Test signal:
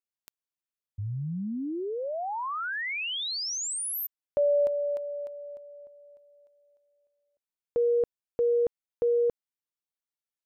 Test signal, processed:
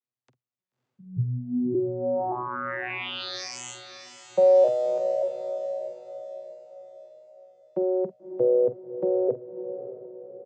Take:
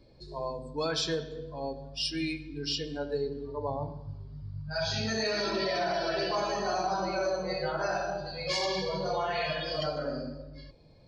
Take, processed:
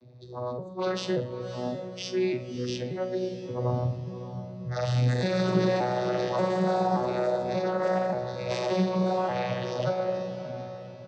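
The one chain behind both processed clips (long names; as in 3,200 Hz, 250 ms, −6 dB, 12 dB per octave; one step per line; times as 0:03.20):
vocoder with an arpeggio as carrier bare fifth, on B2, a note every 580 ms
double-tracking delay 47 ms −13 dB
feedback delay with all-pass diffusion 587 ms, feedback 45%, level −11 dB
level +4.5 dB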